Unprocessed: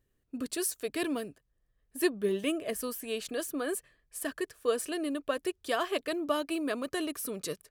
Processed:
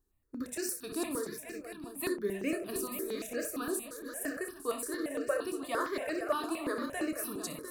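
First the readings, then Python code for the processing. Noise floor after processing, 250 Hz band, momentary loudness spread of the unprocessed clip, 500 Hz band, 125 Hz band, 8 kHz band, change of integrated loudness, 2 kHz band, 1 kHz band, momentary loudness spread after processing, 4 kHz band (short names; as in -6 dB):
-51 dBFS, -2.5 dB, 7 LU, -3.0 dB, n/a, -1.0 dB, -2.5 dB, -1.5 dB, -1.0 dB, 6 LU, -6.5 dB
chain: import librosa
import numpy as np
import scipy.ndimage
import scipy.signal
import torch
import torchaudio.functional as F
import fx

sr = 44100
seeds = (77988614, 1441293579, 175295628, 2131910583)

y = fx.peak_eq(x, sr, hz=3100.0, db=-12.5, octaves=0.23)
y = fx.hum_notches(y, sr, base_hz=50, count=7)
y = fx.doubler(y, sr, ms=29.0, db=-9.0)
y = fx.echo_multitap(y, sr, ms=(62, 309, 487, 702, 855), db=(-8.0, -14.5, -9.5, -10.0, -17.0))
y = fx.phaser_held(y, sr, hz=8.7, low_hz=560.0, high_hz=3500.0)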